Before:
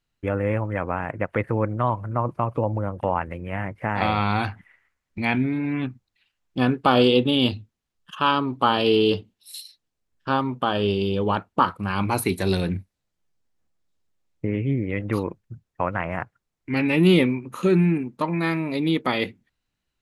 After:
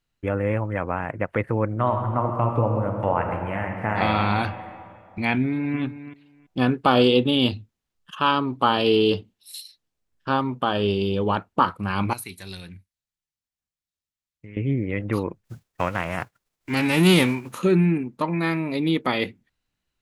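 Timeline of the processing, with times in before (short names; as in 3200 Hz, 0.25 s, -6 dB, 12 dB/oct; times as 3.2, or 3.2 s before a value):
1.67–4.13 reverb throw, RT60 2.5 s, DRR 3 dB
5.4–5.8 echo throw 0.33 s, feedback 15%, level -13 dB
12.13–14.57 passive tone stack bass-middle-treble 5-5-5
15.44–17.57 spectral whitening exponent 0.6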